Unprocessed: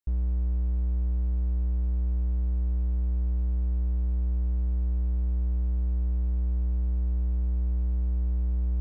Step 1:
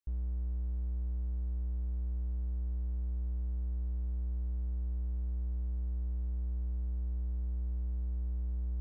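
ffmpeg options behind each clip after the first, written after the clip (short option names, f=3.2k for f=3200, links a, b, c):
-af "alimiter=level_in=1.5dB:limit=-24dB:level=0:latency=1:release=18,volume=-1.5dB,volume=-4dB"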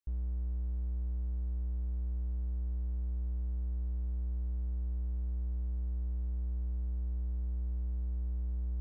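-af anull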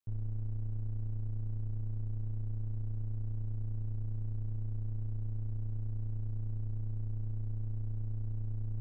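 -af "aeval=exprs='val(0)*sin(2*PI*46*n/s)':c=same,volume=2.5dB"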